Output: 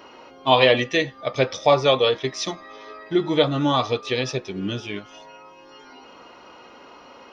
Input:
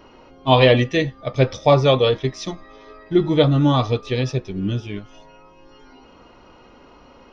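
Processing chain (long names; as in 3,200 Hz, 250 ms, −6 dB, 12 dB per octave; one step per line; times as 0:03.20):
high-pass filter 560 Hz 6 dB per octave
in parallel at +1 dB: downward compressor, threshold −28 dBFS, peak gain reduction 15.5 dB
on the sum: level −1 dB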